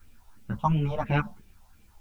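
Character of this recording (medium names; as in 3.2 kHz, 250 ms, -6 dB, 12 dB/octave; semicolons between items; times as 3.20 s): phasing stages 4, 2.9 Hz, lowest notch 310–1200 Hz; a quantiser's noise floor 12-bit, dither triangular; a shimmering, thickened sound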